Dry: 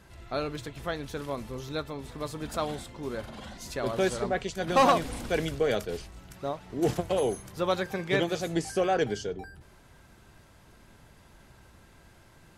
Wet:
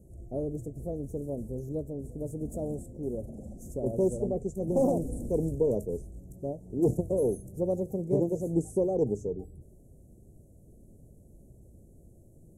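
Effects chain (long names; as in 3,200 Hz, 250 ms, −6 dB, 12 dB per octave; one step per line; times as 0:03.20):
inverse Chebyshev band-stop filter 1,000–4,600 Hz, stop band 40 dB
tilt shelving filter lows +3 dB, about 690 Hz
highs frequency-modulated by the lows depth 0.16 ms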